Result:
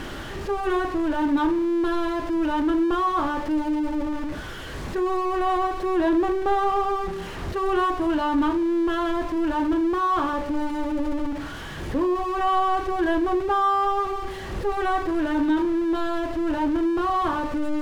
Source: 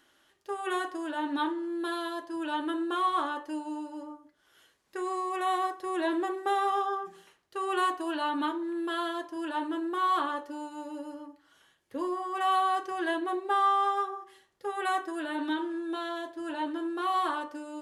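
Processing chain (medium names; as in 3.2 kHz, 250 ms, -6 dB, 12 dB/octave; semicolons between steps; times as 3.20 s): jump at every zero crossing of -31.5 dBFS; RIAA curve playback; trim +2.5 dB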